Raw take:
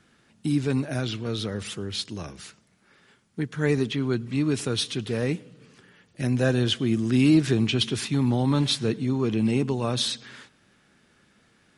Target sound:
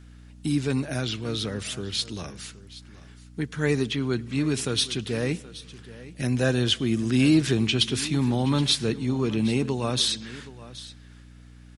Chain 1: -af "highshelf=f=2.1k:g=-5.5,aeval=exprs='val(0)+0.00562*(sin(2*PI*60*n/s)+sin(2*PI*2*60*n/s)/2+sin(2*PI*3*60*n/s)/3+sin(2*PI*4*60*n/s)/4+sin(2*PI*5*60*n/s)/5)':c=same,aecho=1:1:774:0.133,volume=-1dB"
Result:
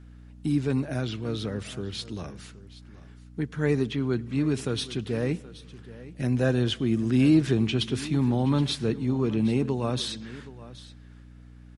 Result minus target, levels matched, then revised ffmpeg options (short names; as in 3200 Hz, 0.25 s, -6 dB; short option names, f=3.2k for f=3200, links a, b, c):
4000 Hz band -6.5 dB
-af "highshelf=f=2.1k:g=5,aeval=exprs='val(0)+0.00562*(sin(2*PI*60*n/s)+sin(2*PI*2*60*n/s)/2+sin(2*PI*3*60*n/s)/3+sin(2*PI*4*60*n/s)/4+sin(2*PI*5*60*n/s)/5)':c=same,aecho=1:1:774:0.133,volume=-1dB"